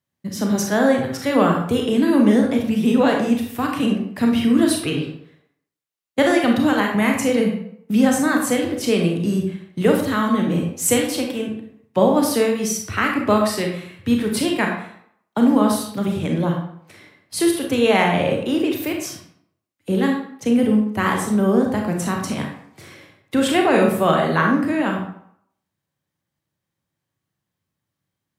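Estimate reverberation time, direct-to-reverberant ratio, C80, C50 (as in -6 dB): 0.70 s, 1.0 dB, 7.5 dB, 4.0 dB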